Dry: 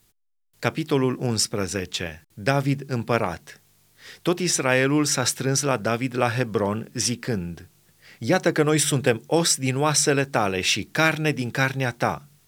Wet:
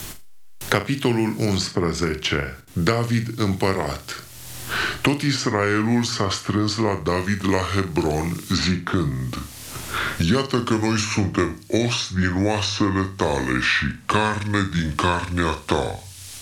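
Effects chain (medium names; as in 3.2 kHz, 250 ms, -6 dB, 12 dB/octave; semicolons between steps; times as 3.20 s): gliding tape speed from 88% -> 64%; flutter echo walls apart 7.1 m, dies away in 0.25 s; three bands compressed up and down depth 100%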